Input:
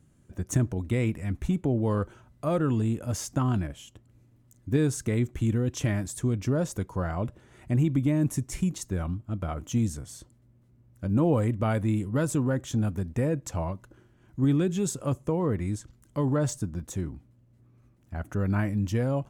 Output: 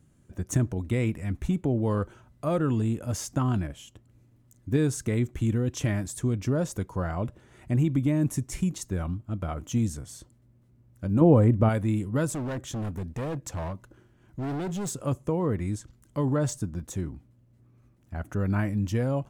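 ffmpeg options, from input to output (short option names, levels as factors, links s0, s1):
-filter_complex "[0:a]asettb=1/sr,asplit=3[s0][s1][s2];[s0]atrim=end=11.214[s3];[s1]atrim=start=11.21:end=11.69,asetpts=PTS-STARTPTS,afade=t=in:d=0.004:c=qsin,afade=t=out:st=0.476:d=0.004:c=qsin,tiltshelf=f=1500:g=6.5[s4];[s2]atrim=start=11.686[s5];[s3][s4]acrossfade=d=0.004:c1=hsin:c2=qsin[s6];[s6][s5]acrossfade=d=0.004:c1=qsin:c2=hsin,asettb=1/sr,asplit=3[s7][s8][s9];[s7]atrim=end=12.324[s10];[s8]atrim=start=12.32:end=14.92,asetpts=PTS-STARTPTS,afade=t=in:d=0.004:c=qsin,afade=t=out:st=2.596:d=0.004:c=qsin,asoftclip=type=hard:threshold=0.0355[s11];[s9]atrim=start=14.916[s12];[s10][s11]acrossfade=d=0.004:c1=hsin:c2=qsin[s13];[s13][s12]acrossfade=d=0.004:c1=qsin:c2=hsin"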